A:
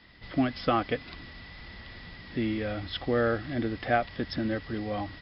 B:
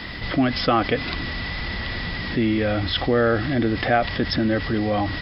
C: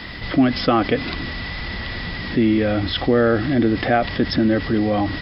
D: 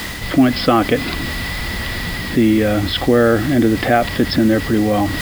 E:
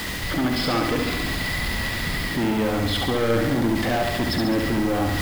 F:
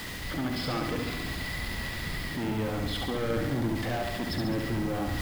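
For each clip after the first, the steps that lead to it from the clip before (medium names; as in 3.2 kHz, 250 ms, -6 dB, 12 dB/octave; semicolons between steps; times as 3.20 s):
level flattener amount 50%; trim +5 dB
dynamic bell 280 Hz, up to +5 dB, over -33 dBFS, Q 0.85
bit crusher 6-bit; reverse; upward compressor, threshold -22 dBFS; reverse; trim +3.5 dB
saturation -18.5 dBFS, distortion -7 dB; on a send: flutter echo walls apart 11.9 m, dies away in 0.97 s; on the sum: trim -2.5 dB
octave divider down 1 oct, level -3 dB; trim -9 dB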